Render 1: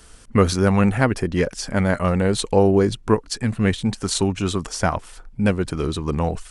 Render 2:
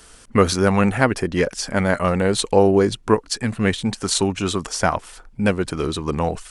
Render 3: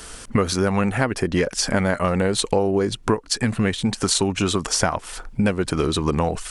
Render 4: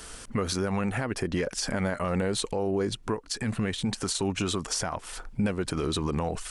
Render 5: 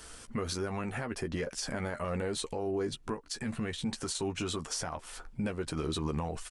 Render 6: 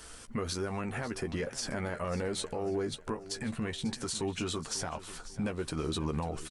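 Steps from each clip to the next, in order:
low-shelf EQ 200 Hz −7.5 dB; level +3 dB
downward compressor 6 to 1, threshold −26 dBFS, peak gain reduction 15.5 dB; level +8.5 dB
brickwall limiter −14 dBFS, peak gain reduction 9.5 dB; level −5 dB
double-tracking delay 13 ms −7.5 dB; level −6.5 dB
repeating echo 544 ms, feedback 35%, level −15 dB

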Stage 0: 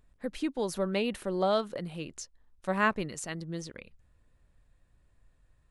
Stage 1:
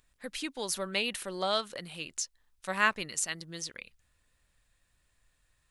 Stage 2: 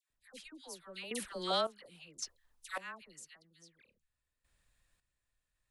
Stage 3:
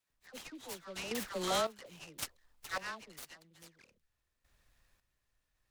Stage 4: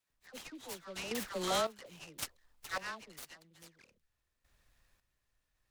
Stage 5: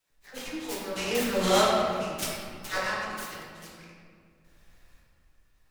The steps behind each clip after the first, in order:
tilt shelving filter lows −9 dB, about 1,200 Hz
all-pass dispersion lows, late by 105 ms, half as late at 1,200 Hz; sample-and-hold tremolo 1.8 Hz, depth 90%; level −2.5 dB
in parallel at +1 dB: brickwall limiter −33 dBFS, peak gain reduction 12 dB; on the sum: short delay modulated by noise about 2,700 Hz, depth 0.04 ms; level −2.5 dB
no processing that can be heard
convolution reverb RT60 2.0 s, pre-delay 6 ms, DRR −5.5 dB; level +5 dB

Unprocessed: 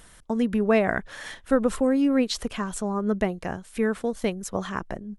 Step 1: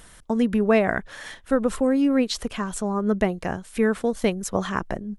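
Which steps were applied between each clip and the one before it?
speech leveller within 4 dB 2 s
level +1 dB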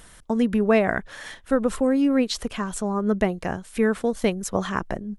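no processing that can be heard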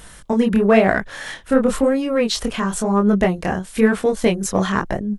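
in parallel at −8 dB: soft clipping −21 dBFS, distortion −9 dB
on the sum: chorus effect 0.98 Hz, delay 19.5 ms, depth 7.5 ms
level +7 dB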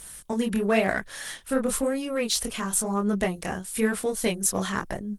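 first-order pre-emphasis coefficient 0.8
level +4.5 dB
Opus 24 kbit/s 48,000 Hz

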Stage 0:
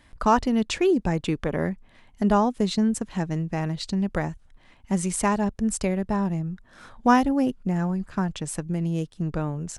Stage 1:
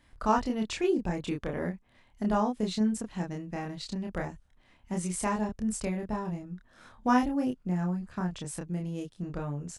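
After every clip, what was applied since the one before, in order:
double-tracking delay 28 ms −2.5 dB
level −8.5 dB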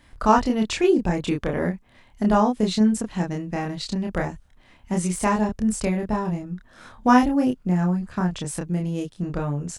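de-essing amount 70%
level +8.5 dB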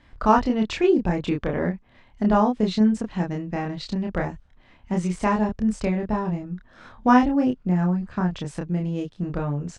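high-frequency loss of the air 120 metres

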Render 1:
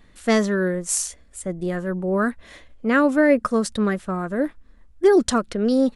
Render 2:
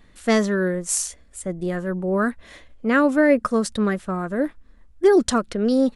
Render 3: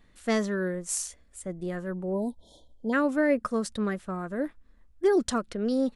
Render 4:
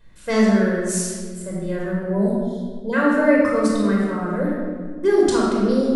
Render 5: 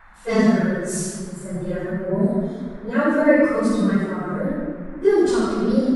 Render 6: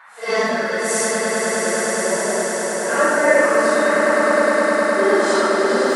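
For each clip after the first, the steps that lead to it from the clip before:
no processing that can be heard
time-frequency box erased 0:02.13–0:02.93, 1,000–3,100 Hz; level −7.5 dB
convolution reverb RT60 1.7 s, pre-delay 20 ms, DRR −4.5 dB
random phases in long frames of 50 ms; harmonic and percussive parts rebalanced percussive −7 dB; noise in a band 730–1,900 Hz −51 dBFS
random phases in long frames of 200 ms; high-pass filter 670 Hz 12 dB per octave; on a send: echo that builds up and dies away 103 ms, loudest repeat 8, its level −8 dB; on the sum: level +6.5 dB

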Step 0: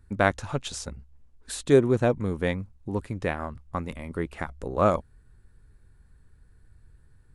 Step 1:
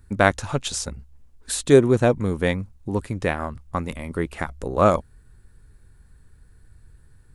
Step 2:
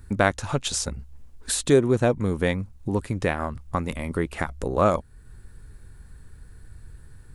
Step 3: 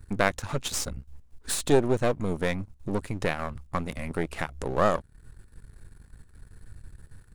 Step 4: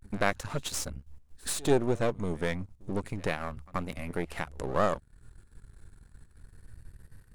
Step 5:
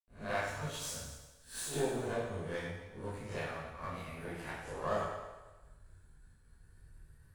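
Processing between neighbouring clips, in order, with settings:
high-shelf EQ 5,100 Hz +6 dB; level +4.5 dB
downward compressor 1.5 to 1, threshold −38 dBFS, peak gain reduction 10.5 dB; level +6 dB
gain on one half-wave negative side −12 dB
echo ahead of the sound 84 ms −23.5 dB; pitch vibrato 0.31 Hz 66 cents; level −3.5 dB
peak hold with a rise ahead of every peak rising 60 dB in 0.34 s; convolution reverb RT60 1.2 s, pre-delay 79 ms; level +5.5 dB

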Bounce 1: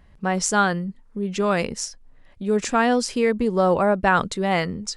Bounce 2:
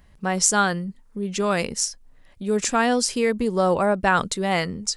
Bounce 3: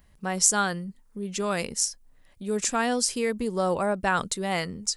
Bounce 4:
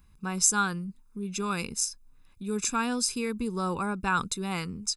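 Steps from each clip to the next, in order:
high-shelf EQ 5,100 Hz +11 dB; level −1.5 dB
high-shelf EQ 7,900 Hz +10 dB; level −5.5 dB
comb filter 0.8 ms, depth 80%; level −4.5 dB

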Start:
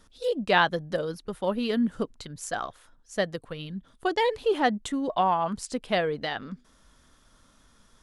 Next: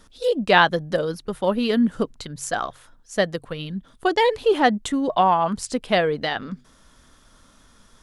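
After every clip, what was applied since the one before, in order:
hum removal 46.02 Hz, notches 3
level +6 dB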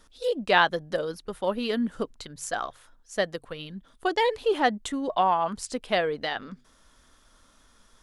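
parametric band 140 Hz −6.5 dB 1.8 octaves
level −4.5 dB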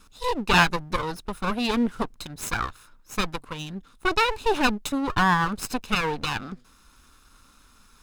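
lower of the sound and its delayed copy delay 0.78 ms
level +5 dB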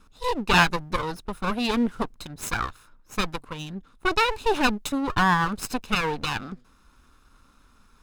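one half of a high-frequency compander decoder only

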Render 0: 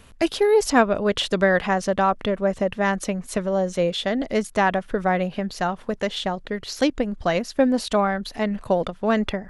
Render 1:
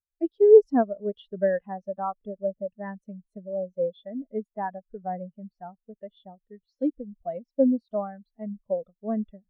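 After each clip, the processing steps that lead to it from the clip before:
every bin expanded away from the loudest bin 2.5 to 1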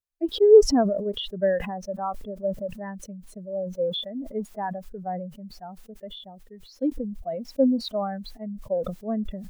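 level that may fall only so fast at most 48 dB per second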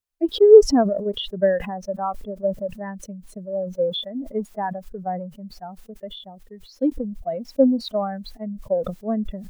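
transient designer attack +2 dB, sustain −3 dB
level +3 dB

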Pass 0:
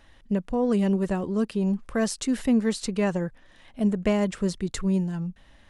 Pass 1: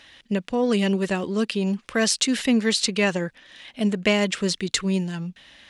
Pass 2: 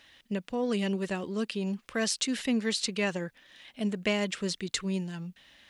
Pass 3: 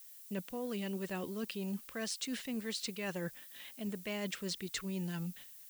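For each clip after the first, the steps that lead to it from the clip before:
meter weighting curve D; level +3 dB
bit-depth reduction 12 bits, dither triangular; level −8 dB
noise gate −54 dBFS, range −21 dB; reversed playback; downward compressor 10 to 1, threshold −37 dBFS, peak gain reduction 15 dB; reversed playback; background noise violet −55 dBFS; level +1 dB

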